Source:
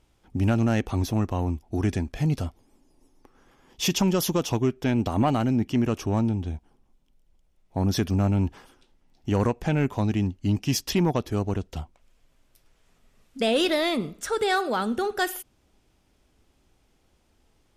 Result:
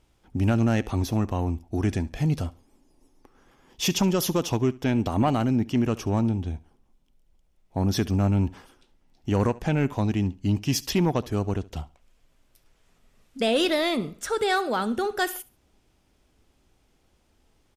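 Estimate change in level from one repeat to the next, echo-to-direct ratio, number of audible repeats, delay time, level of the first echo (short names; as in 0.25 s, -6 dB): -11.5 dB, -20.5 dB, 2, 70 ms, -21.0 dB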